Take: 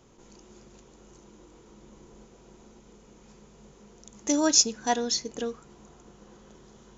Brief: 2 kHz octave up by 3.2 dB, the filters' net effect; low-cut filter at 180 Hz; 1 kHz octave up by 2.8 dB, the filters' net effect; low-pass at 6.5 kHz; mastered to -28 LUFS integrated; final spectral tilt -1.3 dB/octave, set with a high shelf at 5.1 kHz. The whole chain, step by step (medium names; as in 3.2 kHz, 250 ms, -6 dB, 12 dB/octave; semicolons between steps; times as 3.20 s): high-pass 180 Hz; low-pass 6.5 kHz; peaking EQ 1 kHz +3.5 dB; peaking EQ 2 kHz +3.5 dB; treble shelf 5.1 kHz -5.5 dB; trim -1 dB